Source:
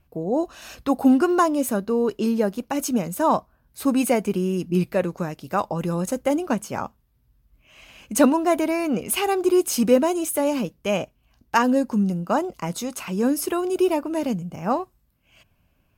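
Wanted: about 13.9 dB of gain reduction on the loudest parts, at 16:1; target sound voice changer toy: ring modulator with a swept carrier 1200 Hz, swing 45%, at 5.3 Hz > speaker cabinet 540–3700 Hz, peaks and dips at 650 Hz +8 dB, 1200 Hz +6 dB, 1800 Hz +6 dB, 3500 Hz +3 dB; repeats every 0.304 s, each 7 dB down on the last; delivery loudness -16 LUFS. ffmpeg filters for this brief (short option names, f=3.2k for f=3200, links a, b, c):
-af "acompressor=threshold=-25dB:ratio=16,aecho=1:1:304|608|912|1216|1520:0.447|0.201|0.0905|0.0407|0.0183,aeval=exprs='val(0)*sin(2*PI*1200*n/s+1200*0.45/5.3*sin(2*PI*5.3*n/s))':c=same,highpass=540,equalizer=f=650:t=q:w=4:g=8,equalizer=f=1.2k:t=q:w=4:g=6,equalizer=f=1.8k:t=q:w=4:g=6,equalizer=f=3.5k:t=q:w=4:g=3,lowpass=f=3.7k:w=0.5412,lowpass=f=3.7k:w=1.3066,volume=12dB"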